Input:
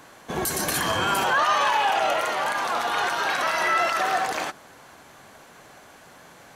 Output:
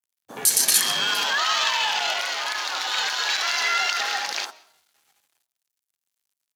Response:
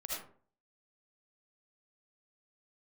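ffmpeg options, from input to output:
-filter_complex "[0:a]bandreject=f=1.1k:w=16,asplit=2[a][b];[b]adelay=947,lowpass=f=950:p=1,volume=-16dB,asplit=2[c][d];[d]adelay=947,lowpass=f=950:p=1,volume=0.17[e];[a][c][e]amix=inputs=3:normalize=0,aeval=exprs='sgn(val(0))*max(abs(val(0))-0.00841,0)':c=same,adynamicequalizer=threshold=0.00891:dfrequency=4300:dqfactor=0.88:tfrequency=4300:tqfactor=0.88:attack=5:release=100:ratio=0.375:range=3:mode=boostabove:tftype=bell,afwtdn=0.02,afreqshift=61,bandreject=f=104.1:t=h:w=4,bandreject=f=208.2:t=h:w=4,bandreject=f=312.3:t=h:w=4,bandreject=f=416.4:t=h:w=4,bandreject=f=520.5:t=h:w=4,bandreject=f=624.6:t=h:w=4,bandreject=f=728.7:t=h:w=4,bandreject=f=832.8:t=h:w=4,bandreject=f=936.9:t=h:w=4,bandreject=f=1.041k:t=h:w=4,bandreject=f=1.1451k:t=h:w=4,asplit=2[f][g];[1:a]atrim=start_sample=2205,adelay=89[h];[g][h]afir=irnorm=-1:irlink=0,volume=-23.5dB[i];[f][i]amix=inputs=2:normalize=0,crystalizer=i=8.5:c=0,volume=-9dB"

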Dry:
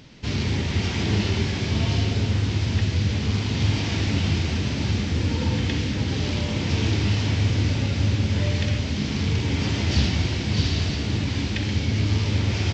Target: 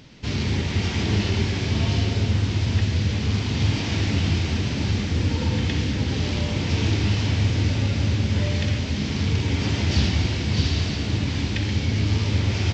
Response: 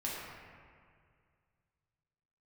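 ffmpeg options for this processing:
-filter_complex "[0:a]asplit=2[a][b];[1:a]atrim=start_sample=2205,adelay=114[c];[b][c]afir=irnorm=-1:irlink=0,volume=-15.5dB[d];[a][d]amix=inputs=2:normalize=0"

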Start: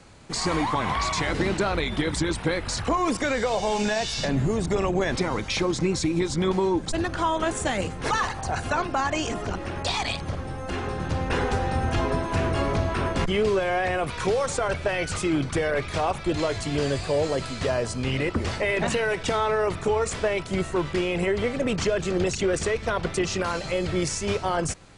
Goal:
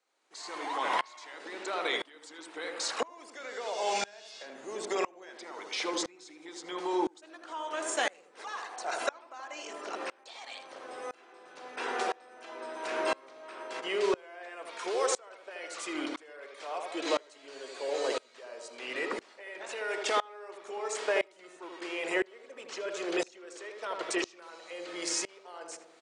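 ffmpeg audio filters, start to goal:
-filter_complex "[0:a]highpass=f=350:w=0.5412,highpass=f=350:w=1.3066,lowshelf=f=490:g=-9,asplit=2[a][b];[b]adelay=76,lowpass=f=950:p=1,volume=-3.5dB,asplit=2[c][d];[d]adelay=76,lowpass=f=950:p=1,volume=0.53,asplit=2[e][f];[f]adelay=76,lowpass=f=950:p=1,volume=0.53,asplit=2[g][h];[h]adelay=76,lowpass=f=950:p=1,volume=0.53,asplit=2[i][j];[j]adelay=76,lowpass=f=950:p=1,volume=0.53,asplit=2[k][l];[l]adelay=76,lowpass=f=950:p=1,volume=0.53,asplit=2[m][n];[n]adelay=76,lowpass=f=950:p=1,volume=0.53[o];[c][e][g][i][k][m][o]amix=inputs=7:normalize=0[p];[a][p]amix=inputs=2:normalize=0,asetrate=42336,aresample=44100,aeval=exprs='val(0)*pow(10,-28*if(lt(mod(-0.99*n/s,1),2*abs(-0.99)/1000),1-mod(-0.99*n/s,1)/(2*abs(-0.99)/1000),(mod(-0.99*n/s,1)-2*abs(-0.99)/1000)/(1-2*abs(-0.99)/1000))/20)':c=same,volume=1.5dB"

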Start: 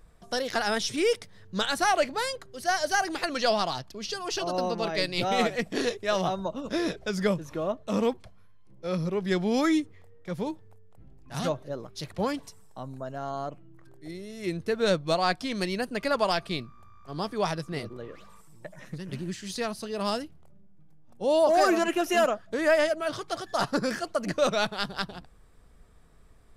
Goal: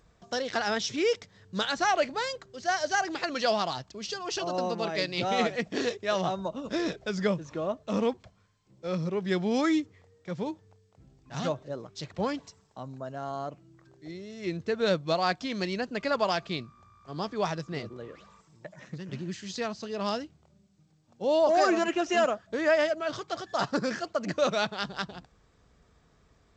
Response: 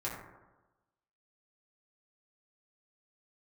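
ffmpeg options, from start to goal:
-af "highpass=61,volume=-1.5dB" -ar 16000 -c:a g722

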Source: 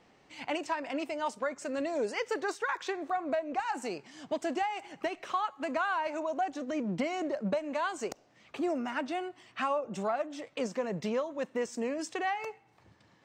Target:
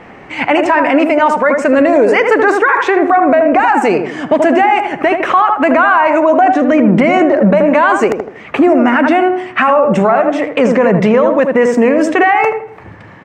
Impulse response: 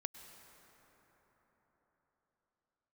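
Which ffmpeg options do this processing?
-filter_complex "[0:a]highshelf=f=3k:t=q:w=1.5:g=-12,asplit=2[a][b];[b]adelay=79,lowpass=f=1.1k:p=1,volume=-6dB,asplit=2[c][d];[d]adelay=79,lowpass=f=1.1k:p=1,volume=0.41,asplit=2[e][f];[f]adelay=79,lowpass=f=1.1k:p=1,volume=0.41,asplit=2[g][h];[h]adelay=79,lowpass=f=1.1k:p=1,volume=0.41,asplit=2[i][j];[j]adelay=79,lowpass=f=1.1k:p=1,volume=0.41[k];[c][e][g][i][k]amix=inputs=5:normalize=0[l];[a][l]amix=inputs=2:normalize=0,alimiter=level_in=27dB:limit=-1dB:release=50:level=0:latency=1,volume=-1dB"

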